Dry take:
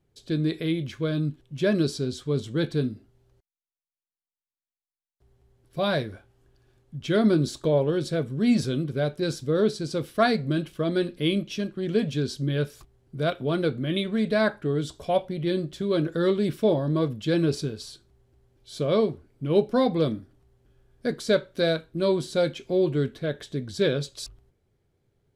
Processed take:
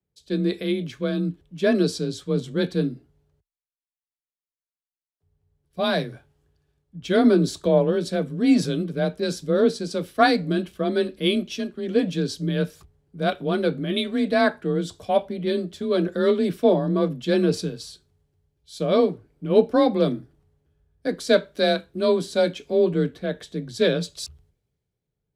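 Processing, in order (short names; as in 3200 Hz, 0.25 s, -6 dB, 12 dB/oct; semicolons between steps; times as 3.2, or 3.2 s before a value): frequency shift +28 Hz; three-band expander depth 40%; gain +2.5 dB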